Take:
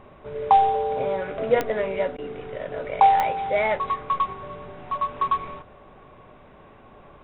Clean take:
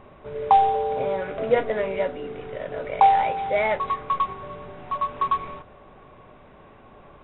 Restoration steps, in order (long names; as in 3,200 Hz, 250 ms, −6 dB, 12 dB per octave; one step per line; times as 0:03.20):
click removal
repair the gap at 0:02.17, 12 ms